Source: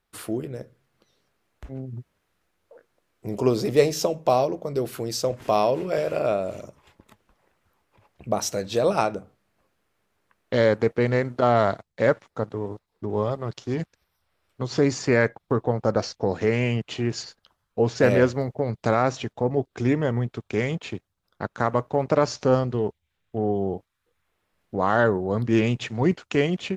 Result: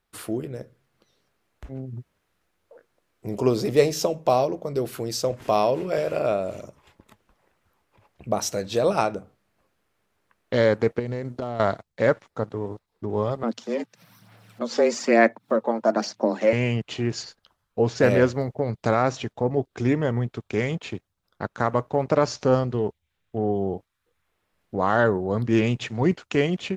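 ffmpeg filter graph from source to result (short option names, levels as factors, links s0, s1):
-filter_complex "[0:a]asettb=1/sr,asplit=3[s0][s1][s2];[s0]atrim=end=10.994[s3];[s1]atrim=start=10.99:end=11.6,asetpts=PTS-STARTPTS,afade=t=in:d=0.004:c=qsin,afade=t=out:st=0.606:d=0.004:c=qsin,equalizer=f=1600:w=0.6:g=-7.5,acompressor=threshold=0.0562:ratio=8:attack=3.2:release=140:knee=1:detection=peak,asoftclip=type=hard:threshold=0.0944[s4];[s2]atrim=start=11.596[s5];[s3][s4]acrossfade=d=0.004:c1=hsin:c2=qsin[s6];[s6][s5]acrossfade=d=0.004:c1=qsin:c2=hsin,asettb=1/sr,asplit=3[s7][s8][s9];[s7]atrim=end=13.434[s10];[s8]atrim=start=13.43:end=16.53,asetpts=PTS-STARTPTS,afade=t=in:d=0.004:c=qsin,afade=t=out:st=3.096:d=0.004:c=qsin,aphaser=in_gain=1:out_gain=1:delay=2.8:decay=0.41:speed=1.1:type=sinusoidal,acompressor=mode=upward:threshold=0.0141:ratio=2.5:attack=3.2:release=140:knee=2.83:detection=peak,afreqshift=110[s11];[s9]atrim=start=16.526[s12];[s10][s11]acrossfade=d=0.004:c1=hsin:c2=qsin[s13];[s13][s12]acrossfade=d=0.004:c1=qsin:c2=hsin"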